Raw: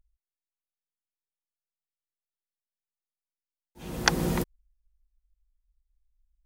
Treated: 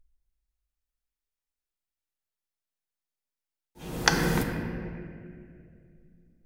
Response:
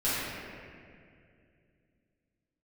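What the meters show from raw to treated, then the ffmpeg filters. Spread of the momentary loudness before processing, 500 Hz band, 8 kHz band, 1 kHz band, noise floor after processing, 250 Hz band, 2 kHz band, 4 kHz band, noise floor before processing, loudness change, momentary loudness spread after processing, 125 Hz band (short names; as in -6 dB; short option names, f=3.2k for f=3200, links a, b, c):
16 LU, +2.0 dB, +1.0 dB, +2.0 dB, under -85 dBFS, +2.0 dB, +2.5 dB, +1.0 dB, under -85 dBFS, 0.0 dB, 22 LU, +2.5 dB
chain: -filter_complex "[0:a]asplit=2[a][b];[1:a]atrim=start_sample=2205[c];[b][c]afir=irnorm=-1:irlink=0,volume=-13dB[d];[a][d]amix=inputs=2:normalize=0,volume=-1dB"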